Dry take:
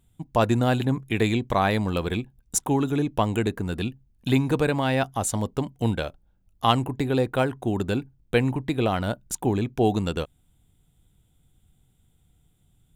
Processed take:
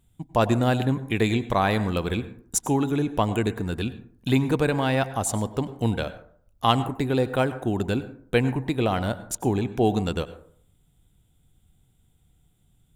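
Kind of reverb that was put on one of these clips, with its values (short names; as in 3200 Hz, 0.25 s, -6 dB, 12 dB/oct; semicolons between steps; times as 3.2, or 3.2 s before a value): plate-style reverb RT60 0.55 s, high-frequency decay 0.4×, pre-delay 85 ms, DRR 13.5 dB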